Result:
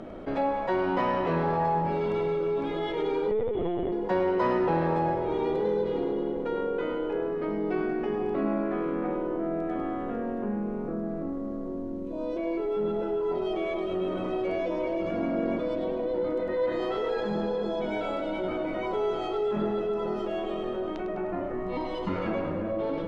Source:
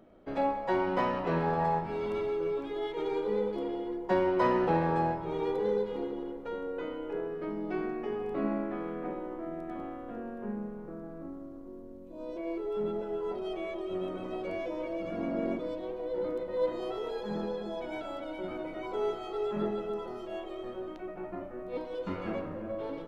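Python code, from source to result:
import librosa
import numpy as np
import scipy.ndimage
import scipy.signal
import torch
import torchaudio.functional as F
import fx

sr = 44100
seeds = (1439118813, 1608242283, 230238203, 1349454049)

y = fx.peak_eq(x, sr, hz=1800.0, db=8.0, octaves=0.64, at=(16.42, 17.25))
y = fx.comb(y, sr, ms=1.0, depth=0.65, at=(21.53, 22.09))
y = fx.air_absorb(y, sr, metres=57.0)
y = fx.echo_split(y, sr, split_hz=600.0, low_ms=484, high_ms=102, feedback_pct=52, wet_db=-9.5)
y = fx.lpc_vocoder(y, sr, seeds[0], excitation='pitch_kept', order=16, at=(3.31, 3.92))
y = fx.env_flatten(y, sr, amount_pct=50)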